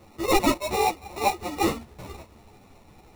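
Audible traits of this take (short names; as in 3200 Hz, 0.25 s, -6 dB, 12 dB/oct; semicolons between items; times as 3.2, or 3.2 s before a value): aliases and images of a low sample rate 1600 Hz, jitter 0%; a shimmering, thickened sound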